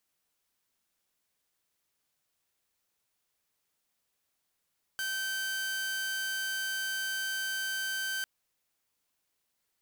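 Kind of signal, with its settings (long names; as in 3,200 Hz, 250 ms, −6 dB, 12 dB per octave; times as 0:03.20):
tone saw 1,550 Hz −29 dBFS 3.25 s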